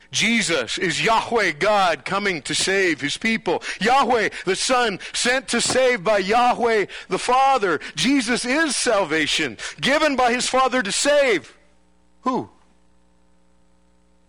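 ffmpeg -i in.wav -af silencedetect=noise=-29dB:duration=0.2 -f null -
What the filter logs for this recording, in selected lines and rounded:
silence_start: 11.44
silence_end: 12.26 | silence_duration: 0.82
silence_start: 12.43
silence_end: 14.28 | silence_duration: 1.85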